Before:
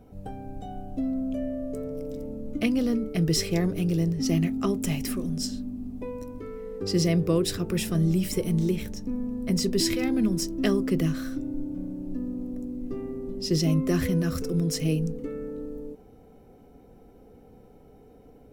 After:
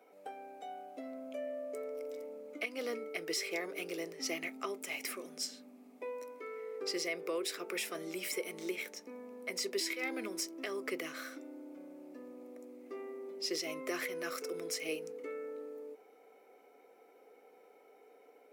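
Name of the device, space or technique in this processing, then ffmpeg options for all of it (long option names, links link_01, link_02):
laptop speaker: -af "highpass=frequency=410:width=0.5412,highpass=frequency=410:width=1.3066,equalizer=frequency=1300:width_type=o:width=0.39:gain=4,equalizer=frequency=2200:width_type=o:width=0.3:gain=11.5,alimiter=limit=-22dB:level=0:latency=1:release=203,volume=-4dB"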